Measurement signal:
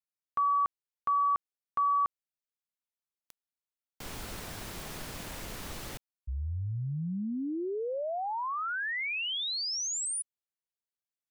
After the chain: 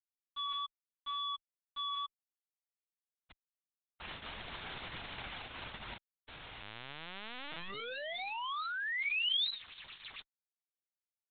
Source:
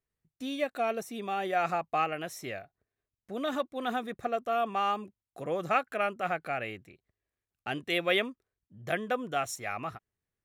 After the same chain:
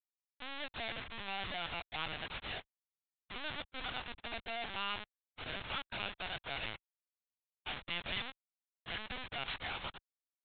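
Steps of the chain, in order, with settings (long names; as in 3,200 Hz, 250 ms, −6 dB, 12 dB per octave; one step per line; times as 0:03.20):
pitch vibrato 3.5 Hz 5.9 cents
comparator with hysteresis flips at −38 dBFS
first difference
linear-prediction vocoder at 8 kHz pitch kept
level +10.5 dB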